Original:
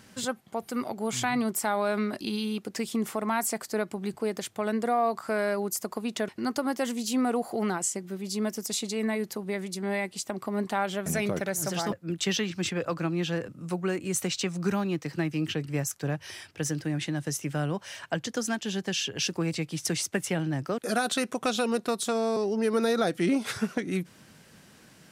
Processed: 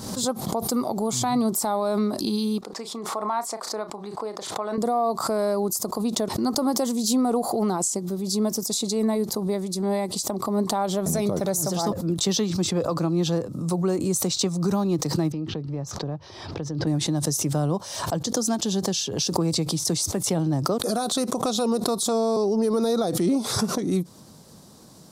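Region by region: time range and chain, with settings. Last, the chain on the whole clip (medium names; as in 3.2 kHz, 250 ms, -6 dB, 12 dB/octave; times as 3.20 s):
2.61–4.78 s: band-pass filter 1.4 kHz, Q 0.84 + doubling 34 ms -13 dB
15.32–16.87 s: compression 3:1, threshold -33 dBFS + distance through air 230 m
whole clip: high-order bell 2.1 kHz -15 dB 1.3 oct; loudness maximiser +20 dB; swell ahead of each attack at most 54 dB/s; trim -14 dB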